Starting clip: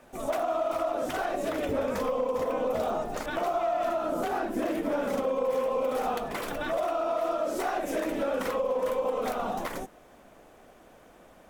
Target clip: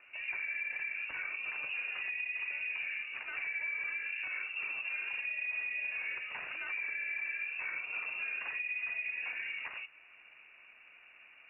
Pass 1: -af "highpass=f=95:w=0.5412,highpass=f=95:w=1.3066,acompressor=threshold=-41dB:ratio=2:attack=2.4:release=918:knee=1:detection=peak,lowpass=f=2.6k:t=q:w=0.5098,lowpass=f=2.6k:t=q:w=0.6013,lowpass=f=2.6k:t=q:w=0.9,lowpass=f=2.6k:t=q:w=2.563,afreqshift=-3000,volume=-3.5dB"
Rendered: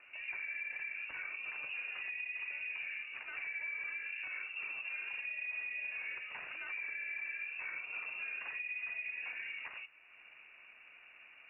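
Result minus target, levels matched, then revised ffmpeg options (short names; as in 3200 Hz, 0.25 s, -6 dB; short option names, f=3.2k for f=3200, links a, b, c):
compressor: peak gain reduction +4 dB
-af "highpass=f=95:w=0.5412,highpass=f=95:w=1.3066,acompressor=threshold=-33.5dB:ratio=2:attack=2.4:release=918:knee=1:detection=peak,lowpass=f=2.6k:t=q:w=0.5098,lowpass=f=2.6k:t=q:w=0.6013,lowpass=f=2.6k:t=q:w=0.9,lowpass=f=2.6k:t=q:w=2.563,afreqshift=-3000,volume=-3.5dB"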